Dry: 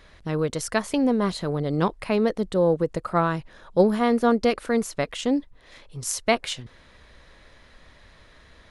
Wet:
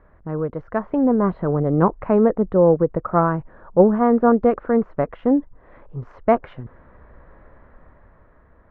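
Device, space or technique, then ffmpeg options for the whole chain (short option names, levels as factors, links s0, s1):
action camera in a waterproof case: -af "lowpass=f=1400:w=0.5412,lowpass=f=1400:w=1.3066,dynaudnorm=f=190:g=11:m=2.24" -ar 48000 -c:a aac -b:a 96k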